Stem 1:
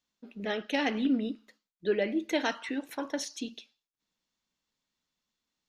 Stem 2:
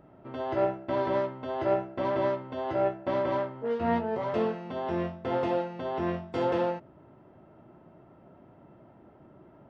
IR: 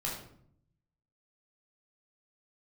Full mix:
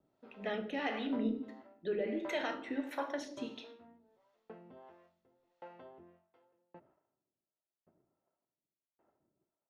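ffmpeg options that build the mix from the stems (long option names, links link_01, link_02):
-filter_complex "[0:a]alimiter=limit=-23.5dB:level=0:latency=1:release=58,volume=-1.5dB,asplit=2[link_01][link_02];[link_02]volume=-4dB[link_03];[1:a]agate=range=-8dB:threshold=-52dB:ratio=16:detection=peak,acompressor=threshold=-30dB:ratio=6,aeval=exprs='val(0)*pow(10,-40*if(lt(mod(0.89*n/s,1),2*abs(0.89)/1000),1-mod(0.89*n/s,1)/(2*abs(0.89)/1000),(mod(0.89*n/s,1)-2*abs(0.89)/1000)/(1-2*abs(0.89)/1000))/20)':channel_layout=same,volume=-5.5dB[link_04];[2:a]atrim=start_sample=2205[link_05];[link_03][link_05]afir=irnorm=-1:irlink=0[link_06];[link_01][link_04][link_06]amix=inputs=3:normalize=0,bass=frequency=250:gain=-7,treble=frequency=4000:gain=-12,acrossover=split=470[link_07][link_08];[link_07]aeval=exprs='val(0)*(1-0.7/2+0.7/2*cos(2*PI*1.5*n/s))':channel_layout=same[link_09];[link_08]aeval=exprs='val(0)*(1-0.7/2-0.7/2*cos(2*PI*1.5*n/s))':channel_layout=same[link_10];[link_09][link_10]amix=inputs=2:normalize=0"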